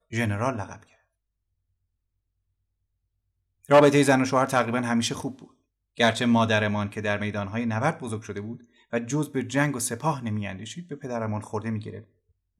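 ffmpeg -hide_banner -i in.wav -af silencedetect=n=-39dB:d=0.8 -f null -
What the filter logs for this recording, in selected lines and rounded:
silence_start: 0.83
silence_end: 3.65 | silence_duration: 2.82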